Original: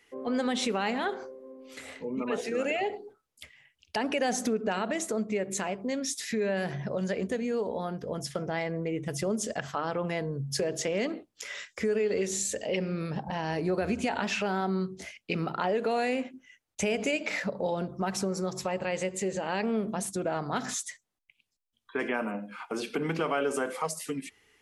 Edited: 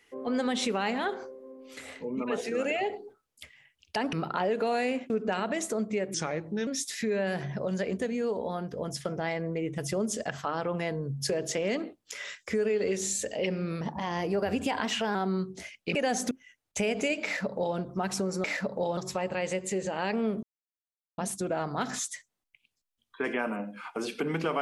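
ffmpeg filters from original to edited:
-filter_complex "[0:a]asplit=12[a][b][c][d][e][f][g][h][i][j][k][l];[a]atrim=end=4.132[m];[b]atrim=start=15.368:end=16.342[n];[c]atrim=start=4.488:end=5.534[o];[d]atrim=start=5.53:end=5.97,asetpts=PTS-STARTPTS,asetrate=36603,aresample=44100,atrim=end_sample=23378,asetpts=PTS-STARTPTS[p];[e]atrim=start=5.966:end=13.114[q];[f]atrim=start=13.11:end=14.57,asetpts=PTS-STARTPTS,asetrate=48069,aresample=44100[r];[g]atrim=start=14.566:end=15.372[s];[h]atrim=start=4.128:end=4.492[t];[i]atrim=start=16.338:end=18.472[u];[j]atrim=start=17.268:end=17.802[v];[k]atrim=start=18.468:end=19.93,asetpts=PTS-STARTPTS,afade=t=out:st=1.458:d=0.004:c=hsin,apad=pad_dur=0.75[w];[l]atrim=start=19.93,asetpts=PTS-STARTPTS,afade=t=in:d=0.004:c=hsin[x];[m][n]acrossfade=d=0.004:c1=hsin:c2=hsin[y];[y][o]acrossfade=d=0.004:c1=hsin:c2=hsin[z];[z][p]acrossfade=d=0.004:c1=hsin:c2=hsin[aa];[aa][q]acrossfade=d=0.004:c1=hsin:c2=hsin[ab];[ab][r]acrossfade=d=0.004:c1=hsin:c2=hsin[ac];[ac][s]acrossfade=d=0.004:c1=hsin:c2=hsin[ad];[ad][t]acrossfade=d=0.004:c1=hsin:c2=hsin[ae];[ae][u]acrossfade=d=0.004:c1=hsin:c2=hsin[af];[af][v]acrossfade=d=0.004:c1=hsin:c2=hsin[ag];[w][x]concat=n=2:v=0:a=1[ah];[ag][ah]acrossfade=d=0.004:c1=hsin:c2=hsin"

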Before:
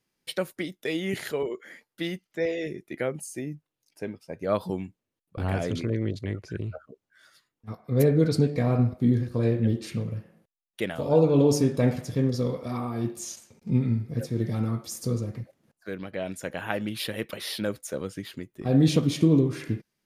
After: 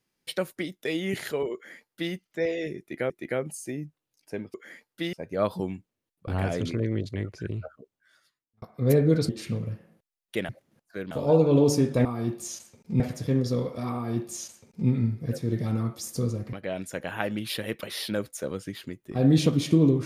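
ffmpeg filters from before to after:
-filter_complex "[0:a]asplit=11[a][b][c][d][e][f][g][h][i][j][k];[a]atrim=end=3.102[l];[b]atrim=start=2.788:end=4.232[m];[c]atrim=start=1.538:end=2.132[n];[d]atrim=start=4.228:end=7.72,asetpts=PTS-STARTPTS,afade=t=out:st=2.522:d=0.97[o];[e]atrim=start=7.72:end=8.392,asetpts=PTS-STARTPTS,afade=t=in:d=0.004:c=hsin[p];[f]atrim=start=9.738:end=10.942[q];[g]atrim=start=15.408:end=16.032[r];[h]atrim=start=10.938:end=11.882[s];[i]atrim=start=12.818:end=13.772[t];[j]atrim=start=11.878:end=15.412[u];[k]atrim=start=16.028[v];[l][m]acrossfade=d=0.004:c1=hsin:c2=hsin[w];[w][n]acrossfade=d=0.004:c1=hsin:c2=hsin[x];[o][p]concat=n=2:v=0:a=1[y];[x][y]acrossfade=d=0.004:c1=hsin:c2=hsin[z];[z][q]acrossfade=d=0.004:c1=hsin:c2=hsin[aa];[aa][r]acrossfade=d=0.004:c1=hsin:c2=hsin[ab];[ab][s]acrossfade=d=0.004:c1=hsin:c2=hsin[ac];[ac][t]acrossfade=d=0.004:c1=hsin:c2=hsin[ad];[ad][u]acrossfade=d=0.004:c1=hsin:c2=hsin[ae];[ae][v]acrossfade=d=0.004:c1=hsin:c2=hsin"

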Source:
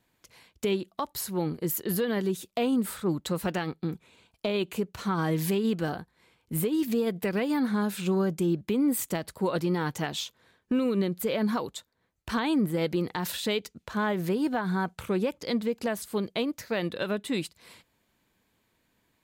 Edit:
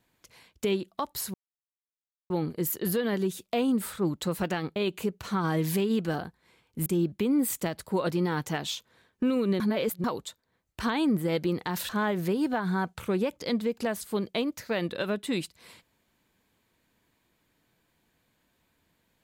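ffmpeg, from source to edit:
-filter_complex "[0:a]asplit=7[a][b][c][d][e][f][g];[a]atrim=end=1.34,asetpts=PTS-STARTPTS,afade=t=out:st=1.336:d=0.004:c=hsin,apad=pad_dur=0.96[h];[b]atrim=start=1.34:end=3.802,asetpts=PTS-STARTPTS,afade=t=in:d=0.004:c=hsin[i];[c]atrim=start=4.498:end=6.602[j];[d]atrim=start=8.348:end=11.092[k];[e]atrim=start=11.088:end=11.532,asetpts=PTS-STARTPTS,areverse[l];[f]atrim=start=11.528:end=13.382[m];[g]atrim=start=13.898[n];[h][i]concat=n=2:v=0:a=1[o];[o][j]acrossfade=d=0.004:c1=hsin:c2=hsin[p];[p][k]acrossfade=d=0.004:c1=hsin:c2=hsin[q];[q][l]acrossfade=d=0.004:c1=hsin:c2=hsin[r];[r][m]acrossfade=d=0.004:c1=hsin:c2=hsin[s];[s][n]acrossfade=d=0.004:c1=hsin:c2=hsin"

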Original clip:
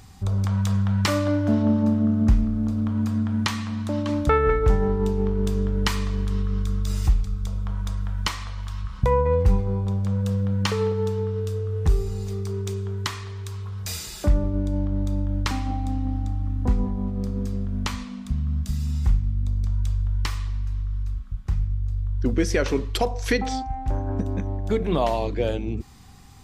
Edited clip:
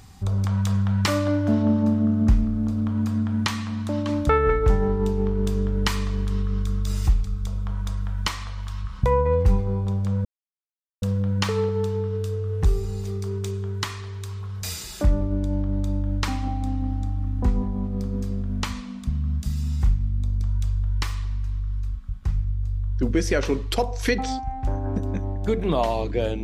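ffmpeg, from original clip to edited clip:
-filter_complex "[0:a]asplit=2[a][b];[a]atrim=end=10.25,asetpts=PTS-STARTPTS,afade=t=out:st=10.246:d=0.004:c=hsin,apad=pad_dur=0.77[c];[b]atrim=start=10.25,asetpts=PTS-STARTPTS,afade=t=in:d=0.004:c=hsin[d];[c][d]concat=n=2:v=0:a=1"

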